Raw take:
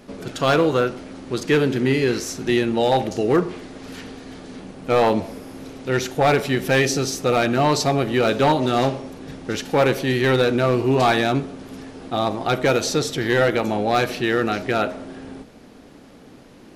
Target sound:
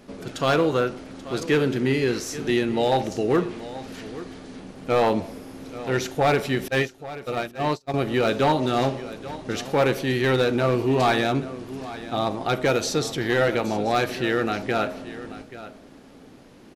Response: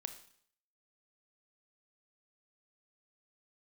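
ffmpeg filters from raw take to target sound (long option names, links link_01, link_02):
-filter_complex "[0:a]asettb=1/sr,asplit=3[link_01][link_02][link_03];[link_01]atrim=end=6.684[link_04];[link_02]atrim=start=6.68:end=7.94,asetpts=PTS-STARTPTS,afade=type=in:duration=0.004:curve=qsin,afade=type=out:start_time=1.256:duration=0.004:curve=qsin,agate=range=-45dB:threshold=-16dB:ratio=16:detection=peak[link_05];[link_03]atrim=start=7.936[link_06];[link_04][link_05]acrossfade=duration=0.004:curve1=hsin:curve2=qsin[link_07];[link_07][link_06]acrossfade=duration=0.004:curve1=qsin:curve2=hsin,aecho=1:1:833:0.168,volume=-3dB"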